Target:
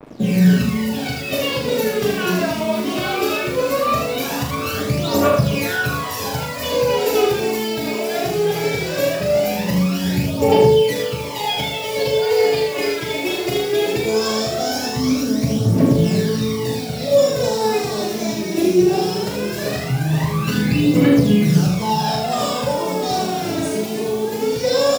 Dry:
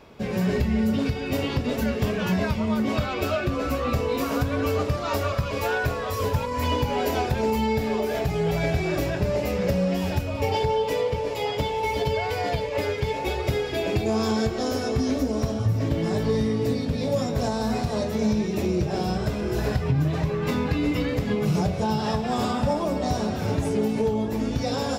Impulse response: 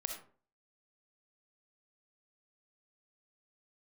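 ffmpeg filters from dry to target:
-filter_complex "[0:a]highpass=f=140:w=0.5412,highpass=f=140:w=1.3066,lowshelf=f=380:g=7.5,bandreject=f=50:t=h:w=6,bandreject=f=100:t=h:w=6,bandreject=f=150:t=h:w=6,bandreject=f=200:t=h:w=6,bandreject=f=250:t=h:w=6,acrusher=bits=6:mix=0:aa=0.5,aphaser=in_gain=1:out_gain=1:delay=3.2:decay=0.72:speed=0.19:type=triangular,asplit=2[a][b];[b]adelay=39,volume=-5.5dB[c];[a][c]amix=inputs=2:normalize=0,asplit=2[d][e];[e]aecho=0:1:78:0.596[f];[d][f]amix=inputs=2:normalize=0,adynamicequalizer=threshold=0.0158:dfrequency=2300:dqfactor=0.7:tfrequency=2300:tqfactor=0.7:attack=5:release=100:ratio=0.375:range=3:mode=boostabove:tftype=highshelf,volume=-1dB"

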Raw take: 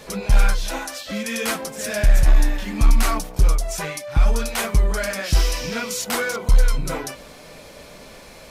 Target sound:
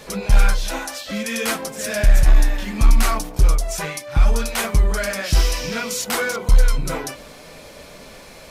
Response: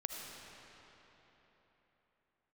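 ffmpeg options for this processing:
-af "bandreject=f=59.45:t=h:w=4,bandreject=f=118.9:t=h:w=4,bandreject=f=178.35:t=h:w=4,bandreject=f=237.8:t=h:w=4,bandreject=f=297.25:t=h:w=4,bandreject=f=356.7:t=h:w=4,bandreject=f=416.15:t=h:w=4,bandreject=f=475.6:t=h:w=4,bandreject=f=535.05:t=h:w=4,bandreject=f=594.5:t=h:w=4,bandreject=f=653.95:t=h:w=4,bandreject=f=713.4:t=h:w=4,bandreject=f=772.85:t=h:w=4,bandreject=f=832.3:t=h:w=4,bandreject=f=891.75:t=h:w=4,bandreject=f=951.2:t=h:w=4,bandreject=f=1.01065k:t=h:w=4,bandreject=f=1.0701k:t=h:w=4,volume=1.5dB"

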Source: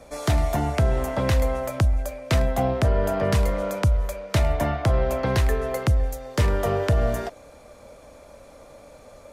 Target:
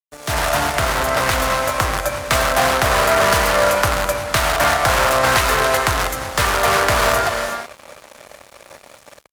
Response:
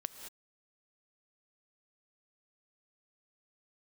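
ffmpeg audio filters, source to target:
-filter_complex "[0:a]asplit=2[a][b];[b]aeval=exprs='(mod(10*val(0)+1,2)-1)/10':c=same,volume=-3.5dB[c];[a][c]amix=inputs=2:normalize=0[d];[1:a]atrim=start_sample=2205,asetrate=26019,aresample=44100[e];[d][e]afir=irnorm=-1:irlink=0,acrossover=split=580[f][g];[g]dynaudnorm=f=200:g=3:m=16dB[h];[f][h]amix=inputs=2:normalize=0,adynamicequalizer=threshold=0.0355:dfrequency=1300:dqfactor=1.4:tfrequency=1300:tqfactor=1.4:attack=5:release=100:ratio=0.375:range=3:mode=boostabove:tftype=bell,aeval=exprs='sgn(val(0))*max(abs(val(0))-0.0422,0)':c=same,highpass=42,volume=-3dB"

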